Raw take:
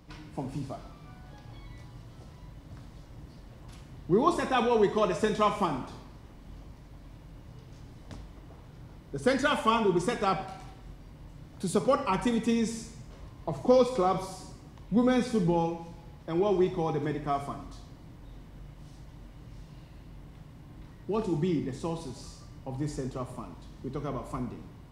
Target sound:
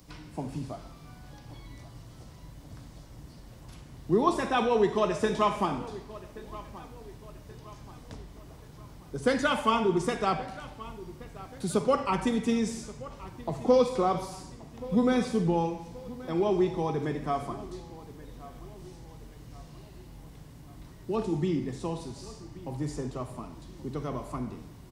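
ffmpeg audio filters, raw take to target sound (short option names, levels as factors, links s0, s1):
-filter_complex "[0:a]acrossover=split=110|5000[s0][s1][s2];[s1]aecho=1:1:1128|2256|3384|4512:0.126|0.0567|0.0255|0.0115[s3];[s2]acompressor=mode=upward:threshold=0.00158:ratio=2.5[s4];[s0][s3][s4]amix=inputs=3:normalize=0"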